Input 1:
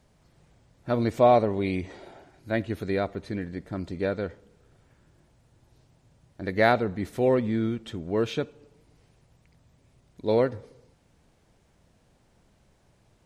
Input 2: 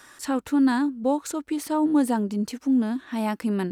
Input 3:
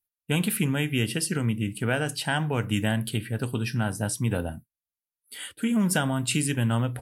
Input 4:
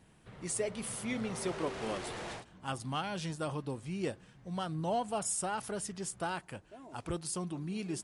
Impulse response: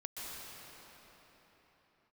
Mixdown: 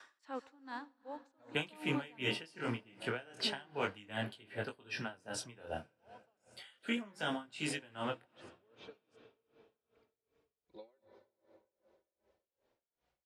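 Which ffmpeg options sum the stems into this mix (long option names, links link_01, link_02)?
-filter_complex "[0:a]equalizer=frequency=67:width_type=o:width=0.77:gain=8.5,acompressor=threshold=-31dB:ratio=8,asplit=2[link_01][link_02];[link_02]adelay=3.7,afreqshift=0.8[link_03];[link_01][link_03]amix=inputs=2:normalize=1,adelay=500,volume=-12.5dB,asplit=2[link_04][link_05];[link_05]volume=-3dB[link_06];[1:a]aeval=exprs='val(0)*pow(10,-18*if(lt(mod(0.6*n/s,1),2*abs(0.6)/1000),1-mod(0.6*n/s,1)/(2*abs(0.6)/1000),(mod(0.6*n/s,1)-2*abs(0.6)/1000)/(1-2*abs(0.6)/1000))/20)':channel_layout=same,volume=-7dB,asplit=2[link_07][link_08];[link_08]volume=-8dB[link_09];[2:a]flanger=delay=19:depth=6.5:speed=0.32,adelay=1250,volume=3dB,asplit=2[link_10][link_11];[link_11]volume=-20dB[link_12];[3:a]alimiter=level_in=6dB:limit=-24dB:level=0:latency=1,volume=-6dB,adelay=1150,volume=-17.5dB[link_13];[4:a]atrim=start_sample=2205[link_14];[link_06][link_09][link_12]amix=inputs=3:normalize=0[link_15];[link_15][link_14]afir=irnorm=-1:irlink=0[link_16];[link_04][link_07][link_10][link_13][link_16]amix=inputs=5:normalize=0,acrossover=split=370 5800:gain=0.141 1 0.0708[link_17][link_18][link_19];[link_17][link_18][link_19]amix=inputs=3:normalize=0,acrossover=split=420|3000[link_20][link_21][link_22];[link_21]acompressor=threshold=-33dB:ratio=2.5[link_23];[link_20][link_23][link_22]amix=inputs=3:normalize=0,aeval=exprs='val(0)*pow(10,-25*(0.5-0.5*cos(2*PI*2.6*n/s))/20)':channel_layout=same"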